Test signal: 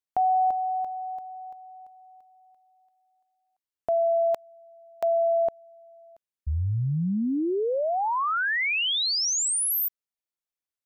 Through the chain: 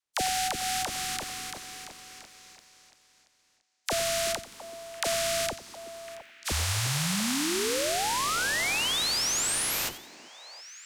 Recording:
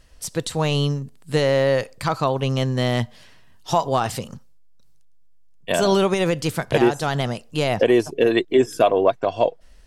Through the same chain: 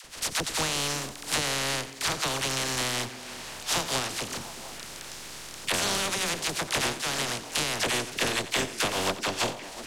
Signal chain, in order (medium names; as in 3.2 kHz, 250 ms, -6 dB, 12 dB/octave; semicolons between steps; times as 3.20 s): spectral contrast reduction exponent 0.22; low-pass 8.5 kHz 12 dB/octave; compression 6:1, threshold -32 dBFS; phase dispersion lows, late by 47 ms, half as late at 610 Hz; on a send: repeats whose band climbs or falls 351 ms, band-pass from 290 Hz, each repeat 1.4 oct, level -9 dB; on the sum: bit-crushed delay 89 ms, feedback 35%, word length 10-bit, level -14 dB; trim +6.5 dB